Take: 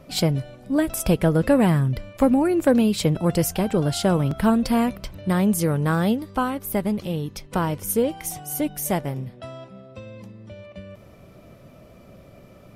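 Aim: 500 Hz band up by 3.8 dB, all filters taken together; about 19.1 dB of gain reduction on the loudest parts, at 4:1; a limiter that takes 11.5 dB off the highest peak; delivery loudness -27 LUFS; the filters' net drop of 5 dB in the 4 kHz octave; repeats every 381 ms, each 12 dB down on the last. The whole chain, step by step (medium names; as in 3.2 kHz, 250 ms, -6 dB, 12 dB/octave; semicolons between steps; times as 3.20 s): peaking EQ 500 Hz +4.5 dB; peaking EQ 4 kHz -6.5 dB; compression 4:1, threshold -34 dBFS; peak limiter -30.5 dBFS; feedback delay 381 ms, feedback 25%, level -12 dB; trim +13 dB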